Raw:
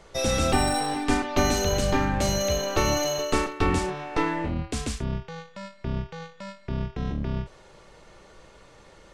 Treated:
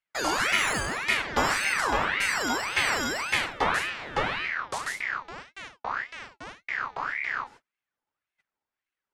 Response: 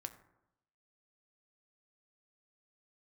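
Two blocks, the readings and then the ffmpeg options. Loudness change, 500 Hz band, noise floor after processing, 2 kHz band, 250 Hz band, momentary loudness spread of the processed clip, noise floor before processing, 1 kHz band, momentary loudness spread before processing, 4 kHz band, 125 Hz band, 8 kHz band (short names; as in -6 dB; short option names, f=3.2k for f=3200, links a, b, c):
-0.5 dB, -8.0 dB, under -85 dBFS, +7.5 dB, -10.5 dB, 14 LU, -52 dBFS, 0.0 dB, 15 LU, 0.0 dB, -14.5 dB, -4.0 dB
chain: -af "agate=range=-37dB:threshold=-44dB:ratio=16:detection=peak,aeval=exprs='val(0)*sin(2*PI*1500*n/s+1500*0.45/1.8*sin(2*PI*1.8*n/s))':c=same"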